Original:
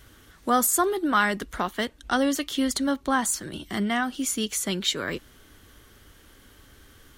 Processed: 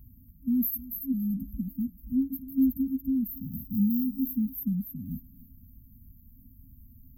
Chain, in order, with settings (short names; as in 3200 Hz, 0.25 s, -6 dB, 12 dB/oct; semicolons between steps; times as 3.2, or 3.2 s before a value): 3.36–4.21 sample sorter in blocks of 16 samples; FFT band-reject 270–12000 Hz; thinning echo 0.285 s, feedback 19%, high-pass 1100 Hz, level -6 dB; gain +3 dB